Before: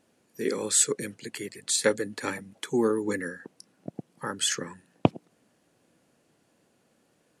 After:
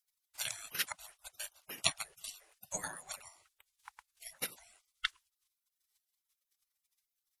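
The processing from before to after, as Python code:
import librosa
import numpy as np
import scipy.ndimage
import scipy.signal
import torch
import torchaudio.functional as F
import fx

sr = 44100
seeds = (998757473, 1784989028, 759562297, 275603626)

y = fx.spec_gate(x, sr, threshold_db=-30, keep='weak')
y = fx.transient(y, sr, attack_db=12, sustain_db=0)
y = y * librosa.db_to_amplitude(3.5)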